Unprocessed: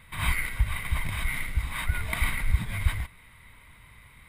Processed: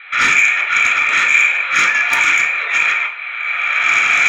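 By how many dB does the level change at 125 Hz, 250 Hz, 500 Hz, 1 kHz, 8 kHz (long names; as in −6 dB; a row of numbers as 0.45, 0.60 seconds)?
below −15 dB, can't be measured, +13.5 dB, +19.5 dB, +15.5 dB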